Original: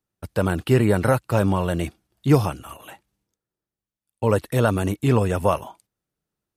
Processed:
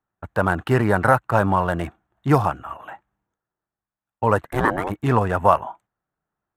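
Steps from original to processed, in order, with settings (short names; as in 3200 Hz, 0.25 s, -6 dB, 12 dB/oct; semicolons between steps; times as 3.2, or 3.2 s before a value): Wiener smoothing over 9 samples; band shelf 1100 Hz +9.5 dB; 4.42–4.89 ring modulator 150 Hz -> 710 Hz; gain -1.5 dB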